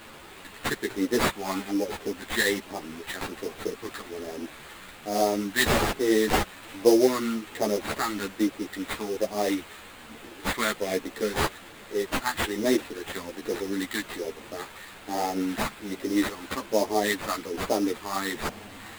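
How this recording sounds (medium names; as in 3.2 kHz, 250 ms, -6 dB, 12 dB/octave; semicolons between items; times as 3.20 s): a quantiser's noise floor 8-bit, dither triangular; phasing stages 2, 1.2 Hz, lowest notch 470–1500 Hz; aliases and images of a low sample rate 5.7 kHz, jitter 20%; a shimmering, thickened sound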